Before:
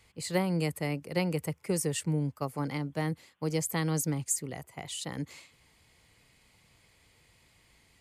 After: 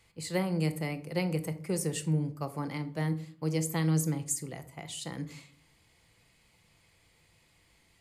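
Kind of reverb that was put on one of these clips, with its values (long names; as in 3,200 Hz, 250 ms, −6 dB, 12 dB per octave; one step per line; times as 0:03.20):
rectangular room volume 550 cubic metres, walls furnished, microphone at 0.76 metres
level −2.5 dB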